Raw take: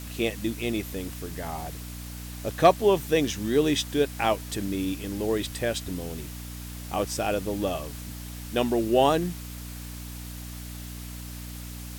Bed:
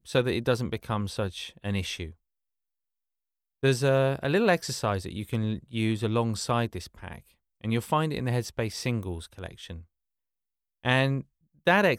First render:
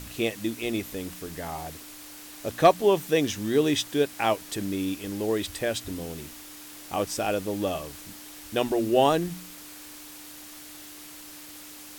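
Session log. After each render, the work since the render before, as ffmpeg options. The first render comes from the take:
-af "bandreject=f=60:t=h:w=4,bandreject=f=120:t=h:w=4,bandreject=f=180:t=h:w=4,bandreject=f=240:t=h:w=4"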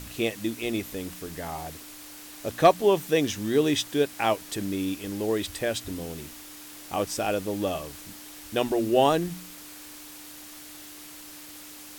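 -af anull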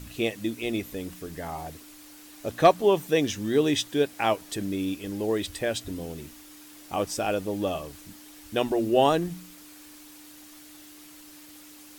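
-af "afftdn=nr=6:nf=-45"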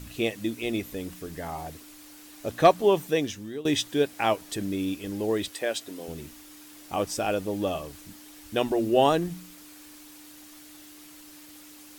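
-filter_complex "[0:a]asettb=1/sr,asplit=3[s0][s1][s2];[s0]atrim=end=5.484[s3];[s1]atrim=start=5.48:end=6.08,asetpts=PTS-STARTPTS,afade=t=in:d=0.004:c=qsin,afade=t=out:st=0.596:d=0.004:c=qsin,highpass=330[s4];[s2]atrim=start=6.076[s5];[s3][s4]acrossfade=d=0.004:c1=hsin:c2=qsin[s6];[s6][s5]acrossfade=d=0.004:c1=qsin:c2=hsin,asplit=2[s7][s8];[s7]atrim=end=3.65,asetpts=PTS-STARTPTS,afade=t=out:st=3.01:d=0.64:silence=0.105925[s9];[s8]atrim=start=3.65,asetpts=PTS-STARTPTS,afade=t=in:d=0.004:c=hsin:silence=0.105925[s10];[s9][s10]concat=n=2:v=0:a=1"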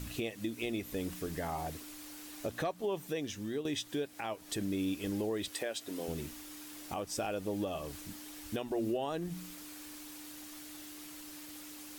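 -af "acompressor=threshold=0.0224:ratio=2,alimiter=level_in=1.19:limit=0.0631:level=0:latency=1:release=285,volume=0.841"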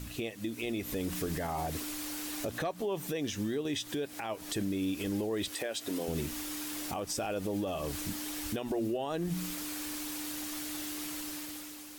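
-af "dynaudnorm=f=130:g=11:m=2.99,alimiter=level_in=1.19:limit=0.0631:level=0:latency=1:release=116,volume=0.841"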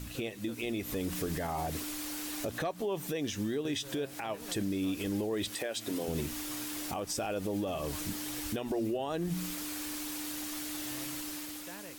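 -filter_complex "[1:a]volume=0.0447[s0];[0:a][s0]amix=inputs=2:normalize=0"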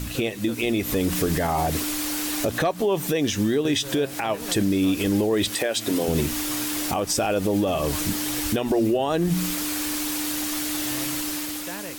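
-af "volume=3.76"

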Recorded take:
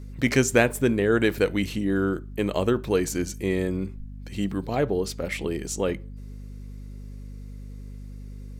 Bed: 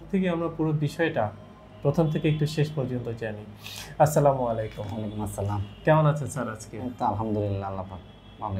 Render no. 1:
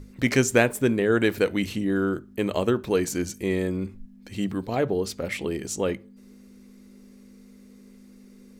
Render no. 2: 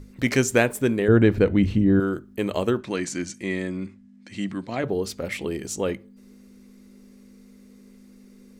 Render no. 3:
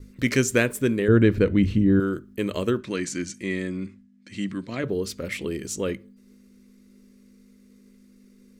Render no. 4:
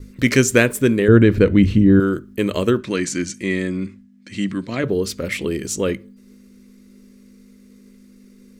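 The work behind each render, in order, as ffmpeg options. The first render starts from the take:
-af "bandreject=f=50:t=h:w=6,bandreject=f=100:t=h:w=6,bandreject=f=150:t=h:w=6"
-filter_complex "[0:a]asettb=1/sr,asplit=3[s0][s1][s2];[s0]atrim=end=1.084[s3];[s1]atrim=start=1.08:end=2,asetpts=PTS-STARTPTS,afade=t=in:d=0.004:c=qsin,afade=t=out:st=0.916:d=0.004:c=qsin,aemphasis=mode=reproduction:type=riaa[s4];[s2]atrim=start=1.996[s5];[s3][s4]acrossfade=d=0.004:c1=hsin:c2=qsin[s6];[s6][s5]acrossfade=d=0.004:c1=qsin:c2=hsin,asettb=1/sr,asplit=3[s7][s8][s9];[s7]atrim=end=2.814[s10];[s8]atrim=start=2.81:end=4.84,asetpts=PTS-STARTPTS,afade=t=in:d=0.004:c=qsin,afade=t=out:st=2.026:d=0.004:c=qsin,highpass=140,equalizer=f=440:t=q:w=4:g=-10,equalizer=f=810:t=q:w=4:g=-4,equalizer=f=2000:t=q:w=4:g=5,lowpass=f=8700:w=0.5412,lowpass=f=8700:w=1.3066[s11];[s9]atrim=start=4.836[s12];[s10][s11]acrossfade=d=0.004:c1=hsin:c2=qsin[s13];[s13][s12]acrossfade=d=0.004:c1=qsin:c2=hsin"
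-af "agate=range=0.0224:threshold=0.00562:ratio=3:detection=peak,equalizer=f=780:t=o:w=0.51:g=-13"
-af "volume=2.11,alimiter=limit=0.891:level=0:latency=1"

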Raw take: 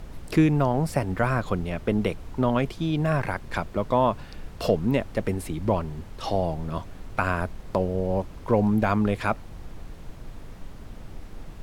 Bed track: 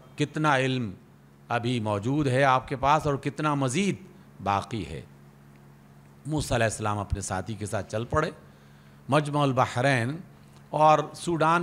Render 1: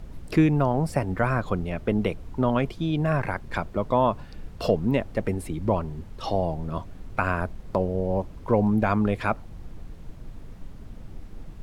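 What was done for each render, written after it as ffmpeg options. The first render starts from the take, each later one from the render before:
-af "afftdn=nr=6:nf=-42"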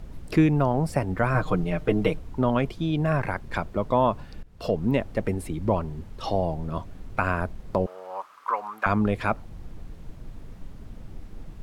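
-filter_complex "[0:a]asettb=1/sr,asplit=3[s0][s1][s2];[s0]atrim=end=1.344[s3];[s1]atrim=start=1.34:end=2.19,asetpts=PTS-STARTPTS,afade=t=in:d=0.004:c=qsin,afade=t=out:st=0.846:d=0.004:c=qsin,aecho=1:1:6.5:0.91,atrim=end_sample=37485[s4];[s2]atrim=start=2.186[s5];[s3][s4]acrossfade=d=0.004:c1=hsin:c2=qsin[s6];[s6][s5]acrossfade=d=0.004:c1=qsin:c2=hsin,asettb=1/sr,asplit=3[s7][s8][s9];[s7]atrim=end=7.864[s10];[s8]atrim=start=7.86:end=8.86,asetpts=PTS-STARTPTS,afade=t=in:d=0.004:c=qsin,afade=t=out:st=0.996:d=0.004:c=qsin,highpass=f=1200:t=q:w=6.4[s11];[s9]atrim=start=8.856[s12];[s10][s11]acrossfade=d=0.004:c1=hsin:c2=qsin[s13];[s13][s12]acrossfade=d=0.004:c1=qsin:c2=hsin,asplit=2[s14][s15];[s14]atrim=end=4.43,asetpts=PTS-STARTPTS,afade=t=out:st=4.426:d=0.004:c=hsin:silence=0.1[s16];[s15]atrim=start=4.43,asetpts=PTS-STARTPTS,afade=t=in:d=0.43:silence=0.1[s17];[s16][s17]concat=n=2:v=0:a=1"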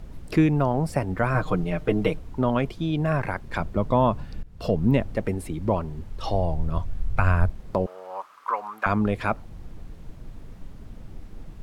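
-filter_complex "[0:a]asettb=1/sr,asplit=3[s0][s1][s2];[s0]atrim=end=3.604[s3];[s1]atrim=start=3.6:end=5.16,asetpts=PTS-STARTPTS,afade=t=in:d=0.004:c=qsin,afade=t=out:st=1.556:d=0.004:c=qsin,bass=f=250:g=6,treble=f=4000:g=0[s4];[s2]atrim=start=5.156[s5];[s3][s4]acrossfade=d=0.004:c1=hsin:c2=qsin[s6];[s6][s5]acrossfade=d=0.004:c1=qsin:c2=hsin,asettb=1/sr,asplit=3[s7][s8][s9];[s7]atrim=end=5.864[s10];[s8]atrim=start=5.86:end=7.5,asetpts=PTS-STARTPTS,afade=t=in:d=0.004:c=qsin,afade=t=out:st=1.636:d=0.004:c=qsin,asubboost=boost=12:cutoff=110[s11];[s9]atrim=start=7.496[s12];[s10][s11]acrossfade=d=0.004:c1=hsin:c2=qsin[s13];[s13][s12]acrossfade=d=0.004:c1=qsin:c2=hsin"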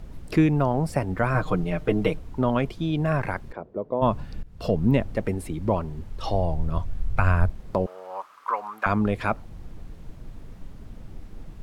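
-filter_complex "[0:a]asplit=3[s0][s1][s2];[s0]afade=t=out:st=3.51:d=0.02[s3];[s1]bandpass=f=450:t=q:w=2,afade=t=in:st=3.51:d=0.02,afade=t=out:st=4.01:d=0.02[s4];[s2]afade=t=in:st=4.01:d=0.02[s5];[s3][s4][s5]amix=inputs=3:normalize=0"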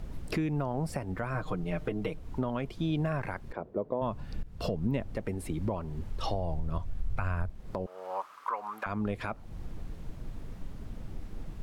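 -af "acompressor=threshold=0.0355:ratio=2,alimiter=limit=0.0944:level=0:latency=1:release=357"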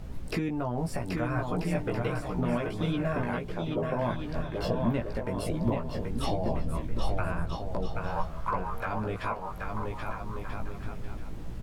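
-filter_complex "[0:a]asplit=2[s0][s1];[s1]adelay=17,volume=0.668[s2];[s0][s2]amix=inputs=2:normalize=0,aecho=1:1:780|1287|1617|1831|1970:0.631|0.398|0.251|0.158|0.1"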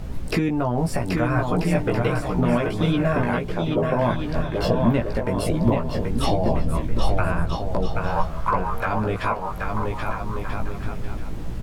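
-af "volume=2.66"

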